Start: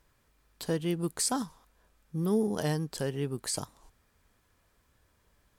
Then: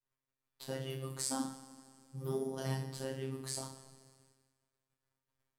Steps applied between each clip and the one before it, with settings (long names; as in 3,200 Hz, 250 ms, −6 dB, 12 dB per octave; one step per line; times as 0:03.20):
coupled-rooms reverb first 0.53 s, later 2.6 s, from −18 dB, DRR −2.5 dB
downward expander −53 dBFS
phases set to zero 133 Hz
level −8.5 dB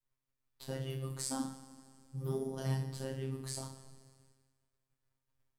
low-shelf EQ 120 Hz +12 dB
level −2 dB